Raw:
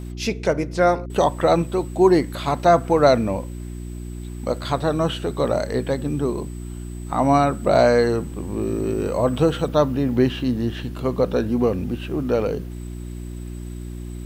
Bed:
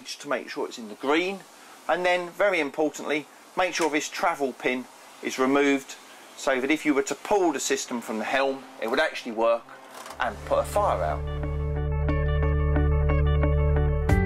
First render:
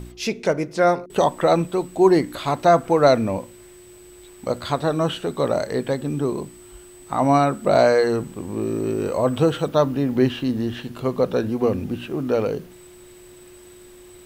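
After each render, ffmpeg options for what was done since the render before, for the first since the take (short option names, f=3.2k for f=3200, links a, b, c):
-af "bandreject=f=60:t=h:w=4,bandreject=f=120:t=h:w=4,bandreject=f=180:t=h:w=4,bandreject=f=240:t=h:w=4,bandreject=f=300:t=h:w=4"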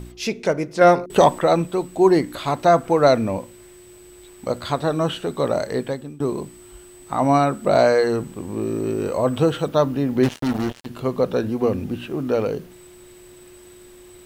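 -filter_complex "[0:a]asettb=1/sr,asplit=3[a][b][c];[a]atrim=end=0.814[d];[b]atrim=start=0.81:end=1.39,asetpts=PTS-STARTPTS,afade=t=in:d=0.004:c=qsin,afade=t=out:st=0.576:d=0.004:c=qsin,acontrast=34[e];[c]atrim=start=1.386[f];[d][e]acrossfade=d=0.004:c1=hsin:c2=qsin[g];[g][f]acrossfade=d=0.004:c1=qsin:c2=hsin,asettb=1/sr,asplit=3[h][i][j];[h]atrim=end=10.234[k];[i]atrim=start=10.23:end=10.86,asetpts=PTS-STARTPTS,afade=t=in:d=0.004:c=qsin,afade=t=out:st=0.626:d=0.004:c=qsin,acrusher=bits=3:mix=0:aa=0.5[l];[j]atrim=start=10.856[m];[k][l]acrossfade=d=0.004:c1=hsin:c2=qsin[n];[n][m]acrossfade=d=0.004:c1=qsin:c2=hsin,asplit=2[o][p];[o]atrim=end=6.2,asetpts=PTS-STARTPTS,afade=t=out:st=5.78:d=0.42:silence=0.0891251[q];[p]atrim=start=6.2,asetpts=PTS-STARTPTS,afade=t=in:d=0.004:c=hsin:silence=0.0891251[r];[q][r]concat=n=2:v=0:a=1"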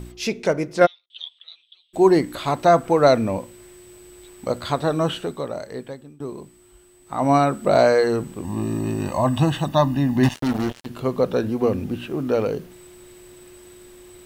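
-filter_complex "[0:a]asplit=3[a][b][c];[a]afade=t=out:st=0.85:d=0.02[d];[b]asuperpass=centerf=3400:order=4:qfactor=5.1,afade=t=in:st=0.85:d=0.02,afade=t=out:st=1.93:d=0.02[e];[c]afade=t=in:st=1.93:d=0.02[f];[d][e][f]amix=inputs=3:normalize=0,asettb=1/sr,asplit=3[g][h][i];[g]atrim=end=8.444[j];[h]atrim=start=8.44:end=10.35,asetpts=PTS-STARTPTS,afade=t=in:d=0.004:c=qsin,afade=t=out:st=1.906:d=0.004:c=qsin,aecho=1:1:1.1:0.9,atrim=end_sample=84231[k];[i]atrim=start=10.346[l];[j][k]acrossfade=d=0.004:c1=hsin:c2=qsin[m];[m][l]acrossfade=d=0.004:c1=qsin:c2=hsin,asplit=3[n][o][p];[n]atrim=end=5.46,asetpts=PTS-STARTPTS,afade=t=out:st=5.18:d=0.28:silence=0.375837[q];[o]atrim=start=5.46:end=7.04,asetpts=PTS-STARTPTS,volume=-8.5dB[r];[p]atrim=start=7.04,asetpts=PTS-STARTPTS,afade=t=in:d=0.28:silence=0.375837[s];[q][r][s]concat=n=3:v=0:a=1"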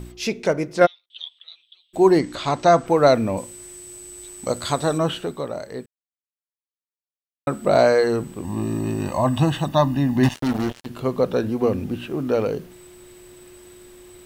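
-filter_complex "[0:a]asettb=1/sr,asplit=3[a][b][c];[a]atrim=end=2.194[d];[b]atrim=start=2.19:end=2.87,asetpts=PTS-STARTPTS,afade=t=in:d=0.004:c=qsin,afade=t=out:st=0.676:d=0.004:c=qsin,lowpass=f=6.4k:t=q:w=1.7[e];[c]atrim=start=2.866[f];[d][e]acrossfade=d=0.004:c1=hsin:c2=qsin[g];[g][f]acrossfade=d=0.004:c1=qsin:c2=hsin,asettb=1/sr,asplit=3[h][i][j];[h]atrim=end=3.374[k];[i]atrim=start=3.37:end=4.98,asetpts=PTS-STARTPTS,afade=t=in:d=0.004:c=qsin,afade=t=out:st=1.606:d=0.004:c=qsin,equalizer=f=8.1k:w=0.9:g=12[l];[j]atrim=start=4.976[m];[k][l]acrossfade=d=0.004:c1=hsin:c2=qsin[n];[n][m]acrossfade=d=0.004:c1=qsin:c2=hsin,asplit=3[o][p][q];[o]atrim=end=5.86,asetpts=PTS-STARTPTS,afade=t=out:st=5.856:d=0.004:c=hsin[r];[p]atrim=start=5.86:end=7.47,asetpts=PTS-STARTPTS,volume=0[s];[q]atrim=start=7.47,asetpts=PTS-STARTPTS,afade=t=in:d=0.004:c=hsin[t];[r][s][t]concat=n=3:v=0:a=1"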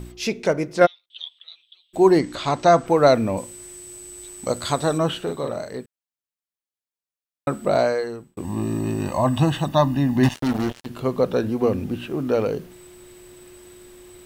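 -filter_complex "[0:a]asettb=1/sr,asplit=3[a][b][c];[a]atrim=end=5.234[d];[b]atrim=start=5.23:end=5.77,asetpts=PTS-STARTPTS,afade=t=in:d=0.004:c=qsin,afade=t=out:st=0.536:d=0.004:c=qsin,asplit=2[e][f];[f]adelay=43,volume=-3.5dB[g];[e][g]amix=inputs=2:normalize=0,atrim=end_sample=23814[h];[c]atrim=start=5.766[i];[d][h]acrossfade=d=0.004:c1=hsin:c2=qsin[j];[j][i]acrossfade=d=0.004:c1=qsin:c2=hsin,asplit=2[k][l];[k]atrim=end=8.37,asetpts=PTS-STARTPTS,afade=t=out:st=7.51:d=0.86[m];[l]atrim=start=8.37,asetpts=PTS-STARTPTS,afade=t=in:d=0.004:c=hsin[n];[m][n]concat=n=2:v=0:a=1"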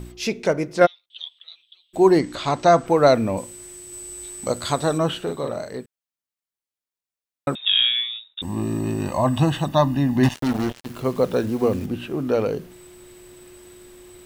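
-filter_complex "[0:a]asettb=1/sr,asplit=3[a][b][c];[a]atrim=end=3.904[d];[b]atrim=start=3.9:end=4.48,asetpts=PTS-STARTPTS,afade=t=in:d=0.004:c=qsin,afade=t=out:st=0.576:d=0.004:c=qsin,asplit=2[e][f];[f]adelay=23,volume=-4dB[g];[e][g]amix=inputs=2:normalize=0,atrim=end_sample=25578[h];[c]atrim=start=4.476[i];[d][h]acrossfade=d=0.004:c1=hsin:c2=qsin[j];[j][i]acrossfade=d=0.004:c1=qsin:c2=hsin,asettb=1/sr,asplit=3[k][l][m];[k]atrim=end=7.554[n];[l]atrim=start=7.55:end=8.42,asetpts=PTS-STARTPTS,afade=t=in:d=0.004:c=qsin,afade=t=out:st=0.866:d=0.004:c=qsin,lowpass=f=3.3k:t=q:w=0.5098,lowpass=f=3.3k:t=q:w=0.6013,lowpass=f=3.3k:t=q:w=0.9,lowpass=f=3.3k:t=q:w=2.563,afreqshift=-3900[o];[m]atrim=start=8.416[p];[n][o]acrossfade=d=0.004:c1=hsin:c2=qsin[q];[q][p]acrossfade=d=0.004:c1=qsin:c2=hsin,asettb=1/sr,asplit=3[r][s][t];[r]atrim=end=10.304[u];[s]atrim=start=10.3:end=11.86,asetpts=PTS-STARTPTS,afade=t=in:d=0.004:c=qsin,afade=t=out:st=1.556:d=0.004:c=qsin,acrusher=bits=8:dc=4:mix=0:aa=0.000001[v];[t]atrim=start=11.856[w];[u][v]acrossfade=d=0.004:c1=hsin:c2=qsin[x];[x][w]acrossfade=d=0.004:c1=qsin:c2=hsin"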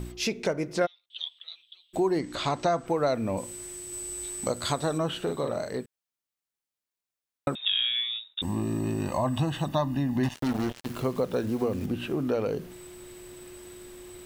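-af "acompressor=threshold=-26dB:ratio=3"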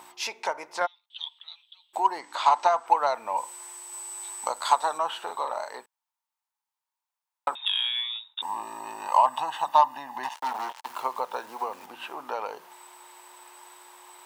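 -af "highpass=f=910:t=q:w=7.3,aeval=exprs='0.531*(cos(1*acos(clip(val(0)/0.531,-1,1)))-cos(1*PI/2))+0.0133*(cos(7*acos(clip(val(0)/0.531,-1,1)))-cos(7*PI/2))':c=same"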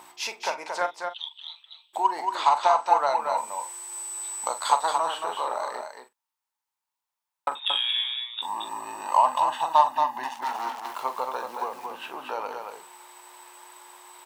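-filter_complex "[0:a]asplit=2[a][b];[b]adelay=43,volume=-11dB[c];[a][c]amix=inputs=2:normalize=0,aecho=1:1:228:0.531"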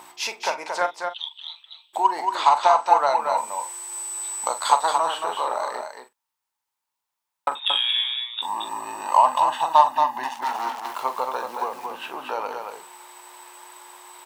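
-af "volume=3.5dB"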